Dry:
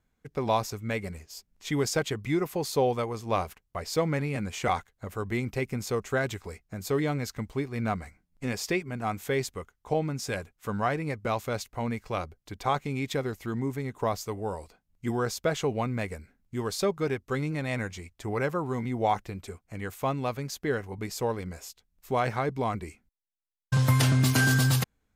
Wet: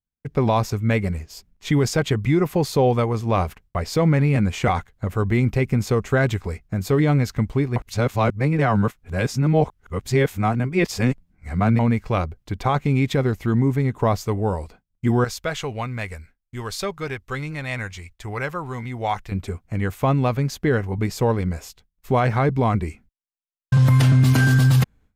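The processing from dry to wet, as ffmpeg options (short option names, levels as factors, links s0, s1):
-filter_complex "[0:a]asettb=1/sr,asplit=3[s0][s1][s2];[s0]atrim=end=15.244[s3];[s1]atrim=start=15.24:end=19.32,asetpts=PTS-STARTPTS,afade=t=in:d=0.004:c=qsin,afade=t=out:st=4.076:d=0.004:c=qsin,equalizer=f=220:w=0.34:g=-14[s4];[s2]atrim=start=19.316[s5];[s3][s4]acrossfade=d=0.004:c1=hsin:c2=qsin[s6];[s6][s5]acrossfade=d=0.004:c1=qsin:c2=hsin,asplit=3[s7][s8][s9];[s7]atrim=end=7.762[s10];[s8]atrim=start=7.758:end=11.792,asetpts=PTS-STARTPTS,areverse[s11];[s9]atrim=start=11.788[s12];[s10][s11]acrossfade=d=0.004:c1=hsin:c2=hsin[s13];[s13][s12]acrossfade=d=0.004:c1=hsin:c2=hsin,agate=range=0.0224:threshold=0.002:ratio=3:detection=peak,bass=f=250:g=7,treble=f=4000:g=-6,alimiter=limit=0.133:level=0:latency=1:release=51,volume=2.51"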